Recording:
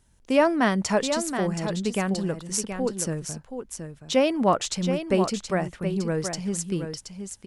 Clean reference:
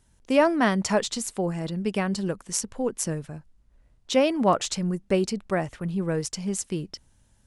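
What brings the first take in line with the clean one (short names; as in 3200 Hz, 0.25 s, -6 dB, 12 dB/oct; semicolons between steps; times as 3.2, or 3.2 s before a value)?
inverse comb 0.724 s -8 dB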